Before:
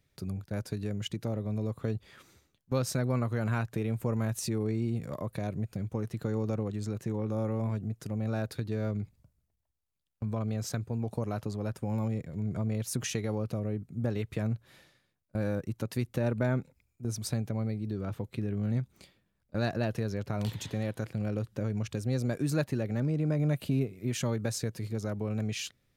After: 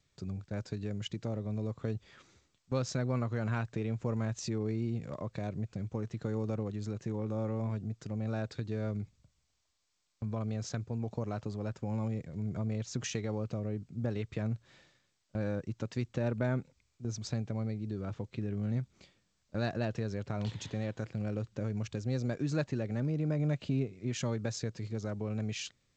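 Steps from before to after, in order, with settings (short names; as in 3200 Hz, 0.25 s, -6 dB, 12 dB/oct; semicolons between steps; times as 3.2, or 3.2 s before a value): gain -3 dB; G.722 64 kbps 16000 Hz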